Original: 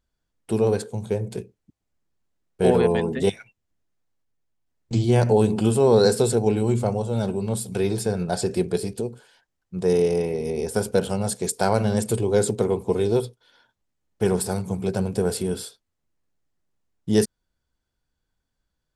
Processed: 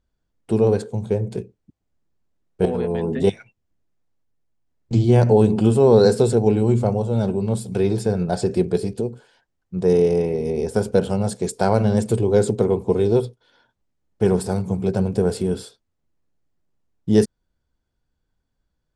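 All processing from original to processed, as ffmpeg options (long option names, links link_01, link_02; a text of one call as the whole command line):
ffmpeg -i in.wav -filter_complex "[0:a]asettb=1/sr,asplit=3[link_01][link_02][link_03];[link_01]atrim=end=2.654[link_04];[link_02]atrim=start=2.65:end=3.24,asetpts=PTS-STARTPTS,afade=type=in:duration=0.004:curve=qsin,afade=type=out:start_time=0.586:duration=0.004:curve=qsin,equalizer=frequency=9500:width_type=o:width=0.33:gain=2.5,acompressor=threshold=-24dB:ratio=5:attack=3.2:release=140:knee=1:detection=peak,asplit=2[link_05][link_06];[link_06]adelay=12,volume=-8.5dB[link_07];[link_05][link_07]amix=inputs=2:normalize=0,atrim=end_sample=26019[link_08];[link_03]atrim=start=3.236[link_09];[link_04][link_08]acrossfade=duration=0.004:curve1=hsin:curve2=qsin[link_10];[link_10][link_09]acrossfade=duration=0.004:curve1=qsin:curve2=hsin,lowpass=8600,tiltshelf=frequency=970:gain=3.5,volume=1dB" out.wav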